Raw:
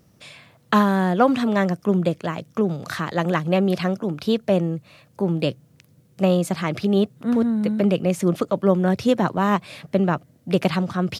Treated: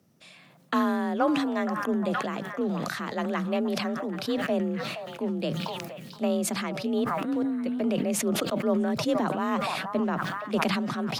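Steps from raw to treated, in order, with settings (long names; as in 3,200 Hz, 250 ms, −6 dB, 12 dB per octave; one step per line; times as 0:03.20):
frequency shifter +34 Hz
echo through a band-pass that steps 472 ms, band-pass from 940 Hz, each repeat 0.7 octaves, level −10 dB
level that may fall only so fast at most 26 dB per second
level −8.5 dB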